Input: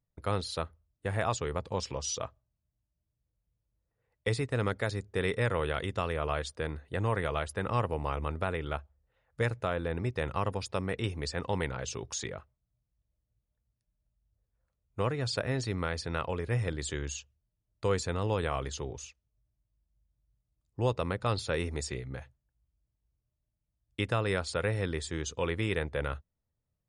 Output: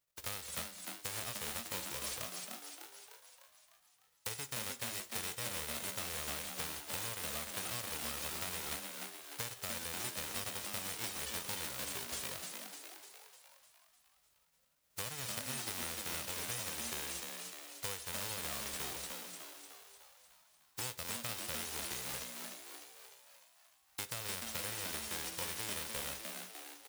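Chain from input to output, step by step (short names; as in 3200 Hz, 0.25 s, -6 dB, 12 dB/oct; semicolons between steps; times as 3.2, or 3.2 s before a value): spectral whitening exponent 0.1; compressor, threshold -37 dBFS, peak gain reduction 13.5 dB; frequency-shifting echo 0.301 s, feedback 56%, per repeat +110 Hz, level -4 dB; on a send at -14 dB: reverb, pre-delay 3 ms; on the sum: gain -2 dB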